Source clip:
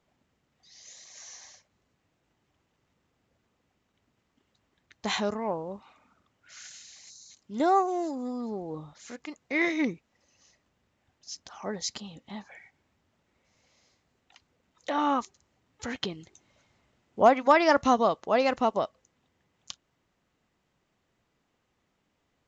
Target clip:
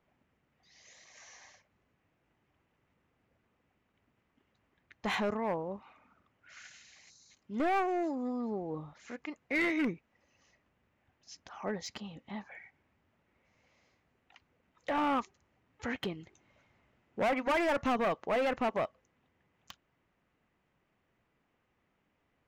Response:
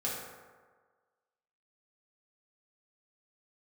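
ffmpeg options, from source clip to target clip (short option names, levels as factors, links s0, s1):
-af "lowpass=6400,asoftclip=type=hard:threshold=0.0531,highshelf=f=3100:t=q:w=1.5:g=-6,volume=0.841"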